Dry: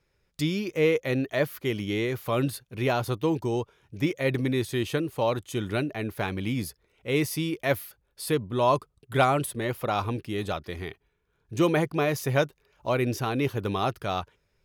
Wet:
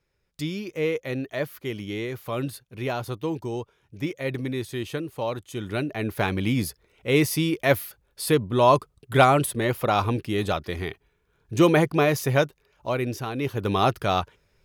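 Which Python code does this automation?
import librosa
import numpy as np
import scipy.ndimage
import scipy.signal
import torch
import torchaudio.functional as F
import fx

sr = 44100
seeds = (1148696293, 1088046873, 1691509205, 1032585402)

y = fx.gain(x, sr, db=fx.line((5.54, -3.0), (6.16, 5.0), (12.0, 5.0), (13.34, -3.0), (13.8, 6.0)))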